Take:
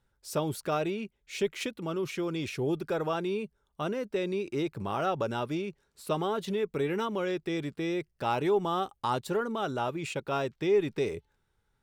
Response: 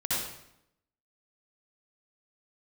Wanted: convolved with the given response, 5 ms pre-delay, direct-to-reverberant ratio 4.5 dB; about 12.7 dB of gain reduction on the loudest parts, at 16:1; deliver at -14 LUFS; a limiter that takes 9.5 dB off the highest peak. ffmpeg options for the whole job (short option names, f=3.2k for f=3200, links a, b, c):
-filter_complex "[0:a]acompressor=threshold=-34dB:ratio=16,alimiter=level_in=8dB:limit=-24dB:level=0:latency=1,volume=-8dB,asplit=2[a][b];[1:a]atrim=start_sample=2205,adelay=5[c];[b][c]afir=irnorm=-1:irlink=0,volume=-12.5dB[d];[a][d]amix=inputs=2:normalize=0,volume=25.5dB"